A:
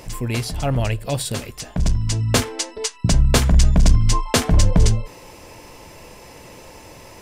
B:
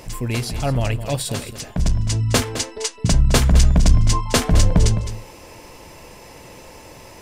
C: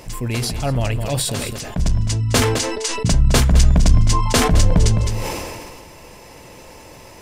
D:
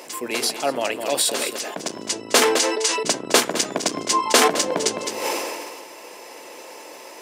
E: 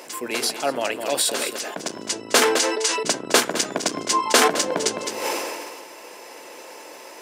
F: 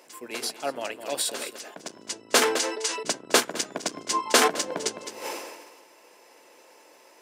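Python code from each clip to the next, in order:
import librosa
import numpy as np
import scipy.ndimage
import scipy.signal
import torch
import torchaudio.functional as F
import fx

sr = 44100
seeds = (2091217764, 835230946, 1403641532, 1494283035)

y1 = x + 10.0 ** (-12.0 / 20.0) * np.pad(x, (int(211 * sr / 1000.0), 0))[:len(x)]
y2 = fx.sustainer(y1, sr, db_per_s=29.0)
y3 = fx.octave_divider(y2, sr, octaves=2, level_db=-2.0)
y3 = scipy.signal.sosfilt(scipy.signal.butter(4, 320.0, 'highpass', fs=sr, output='sos'), y3)
y3 = y3 * librosa.db_to_amplitude(2.5)
y4 = fx.peak_eq(y3, sr, hz=1500.0, db=4.0, octaves=0.32)
y4 = y4 * librosa.db_to_amplitude(-1.0)
y5 = fx.upward_expand(y4, sr, threshold_db=-35.0, expansion=1.5)
y5 = y5 * librosa.db_to_amplitude(-2.0)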